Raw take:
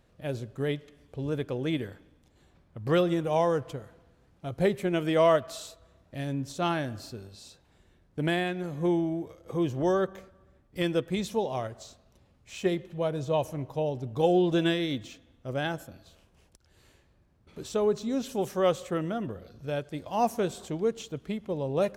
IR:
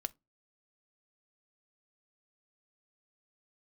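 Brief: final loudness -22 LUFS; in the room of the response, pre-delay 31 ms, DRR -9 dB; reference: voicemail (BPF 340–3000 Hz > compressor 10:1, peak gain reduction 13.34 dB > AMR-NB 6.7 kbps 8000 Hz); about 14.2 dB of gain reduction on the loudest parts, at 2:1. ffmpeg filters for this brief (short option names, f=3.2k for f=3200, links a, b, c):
-filter_complex "[0:a]acompressor=threshold=-46dB:ratio=2,asplit=2[a][b];[1:a]atrim=start_sample=2205,adelay=31[c];[b][c]afir=irnorm=-1:irlink=0,volume=10dB[d];[a][d]amix=inputs=2:normalize=0,highpass=340,lowpass=3k,acompressor=threshold=-36dB:ratio=10,volume=21dB" -ar 8000 -c:a libopencore_amrnb -b:a 6700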